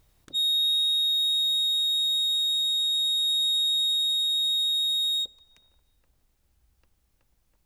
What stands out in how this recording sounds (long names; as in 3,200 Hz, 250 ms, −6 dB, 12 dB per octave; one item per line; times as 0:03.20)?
background noise floor −70 dBFS
spectral slope +1.5 dB per octave